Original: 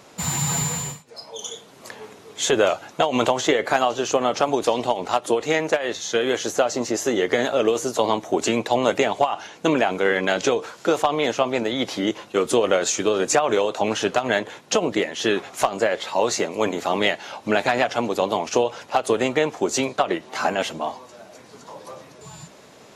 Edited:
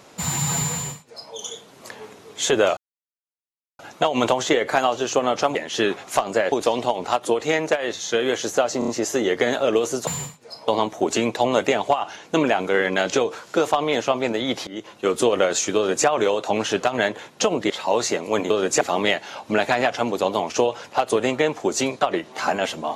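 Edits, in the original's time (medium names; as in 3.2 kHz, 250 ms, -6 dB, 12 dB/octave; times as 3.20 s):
0.73–1.34 s: copy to 7.99 s
2.77 s: insert silence 1.02 s
6.80 s: stutter 0.03 s, 4 plays
11.98–12.40 s: fade in, from -19 dB
13.07–13.38 s: copy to 16.78 s
15.01–15.98 s: move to 4.53 s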